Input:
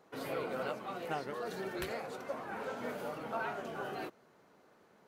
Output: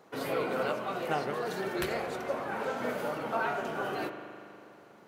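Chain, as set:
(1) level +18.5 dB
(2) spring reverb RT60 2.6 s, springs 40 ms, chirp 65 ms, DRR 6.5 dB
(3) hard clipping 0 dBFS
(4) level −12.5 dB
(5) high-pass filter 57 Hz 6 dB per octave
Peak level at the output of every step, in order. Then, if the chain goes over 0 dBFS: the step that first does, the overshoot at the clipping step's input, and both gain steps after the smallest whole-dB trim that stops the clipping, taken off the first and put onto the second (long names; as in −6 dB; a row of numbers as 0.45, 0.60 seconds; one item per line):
−3.0, −2.5, −2.5, −15.0, −15.0 dBFS
no step passes full scale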